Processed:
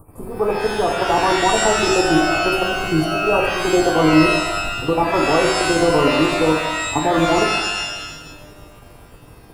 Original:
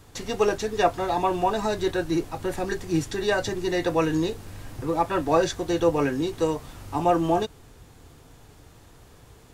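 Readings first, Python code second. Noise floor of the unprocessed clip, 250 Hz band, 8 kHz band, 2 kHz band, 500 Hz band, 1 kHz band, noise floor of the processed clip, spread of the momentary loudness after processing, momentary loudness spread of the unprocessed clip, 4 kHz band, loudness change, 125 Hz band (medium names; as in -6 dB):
-51 dBFS, +8.0 dB, +12.5 dB, +13.5 dB, +6.5 dB, +8.0 dB, -43 dBFS, 7 LU, 8 LU, +13.0 dB, +8.5 dB, +6.5 dB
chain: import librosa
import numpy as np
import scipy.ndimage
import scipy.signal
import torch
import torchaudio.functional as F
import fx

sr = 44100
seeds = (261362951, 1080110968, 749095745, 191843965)

y = scipy.signal.sosfilt(scipy.signal.cheby1(4, 1.0, [1200.0, 9200.0], 'bandstop', fs=sr, output='sos'), x)
y = fx.level_steps(y, sr, step_db=13)
y = fx.rev_shimmer(y, sr, seeds[0], rt60_s=1.0, semitones=12, shimmer_db=-2, drr_db=1.5)
y = y * 10.0 ** (9.0 / 20.0)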